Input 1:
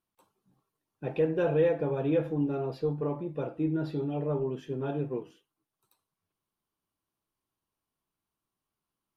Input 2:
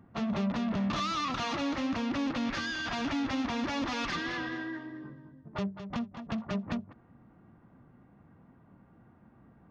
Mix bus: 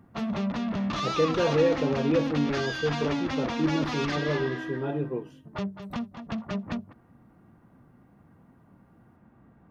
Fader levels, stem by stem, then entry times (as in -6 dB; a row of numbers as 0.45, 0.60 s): +2.0, +1.5 dB; 0.00, 0.00 s